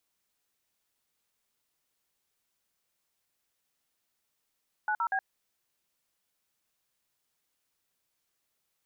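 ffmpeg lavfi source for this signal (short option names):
-f lavfi -i "aevalsrc='0.0355*clip(min(mod(t,0.12),0.07-mod(t,0.12))/0.002,0,1)*(eq(floor(t/0.12),0)*(sin(2*PI*852*mod(t,0.12))+sin(2*PI*1477*mod(t,0.12)))+eq(floor(t/0.12),1)*(sin(2*PI*941*mod(t,0.12))+sin(2*PI*1336*mod(t,0.12)))+eq(floor(t/0.12),2)*(sin(2*PI*770*mod(t,0.12))+sin(2*PI*1633*mod(t,0.12))))':d=0.36:s=44100"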